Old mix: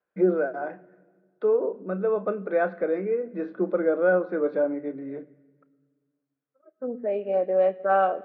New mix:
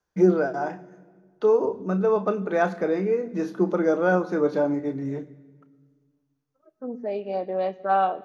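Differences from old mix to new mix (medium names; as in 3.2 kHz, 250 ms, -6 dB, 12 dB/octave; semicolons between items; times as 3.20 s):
first voice: send +7.5 dB; master: remove cabinet simulation 180–2700 Hz, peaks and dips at 540 Hz +7 dB, 900 Hz -7 dB, 1.5 kHz +4 dB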